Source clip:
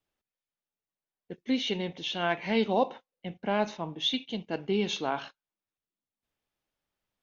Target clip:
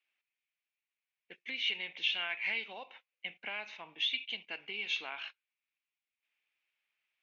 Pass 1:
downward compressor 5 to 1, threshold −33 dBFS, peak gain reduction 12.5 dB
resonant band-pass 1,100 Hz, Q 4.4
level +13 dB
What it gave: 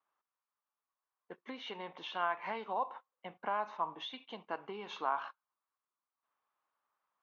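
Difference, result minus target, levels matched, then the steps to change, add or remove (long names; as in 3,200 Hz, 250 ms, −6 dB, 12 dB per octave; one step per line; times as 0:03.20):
1,000 Hz band +17.5 dB
change: resonant band-pass 2,400 Hz, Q 4.4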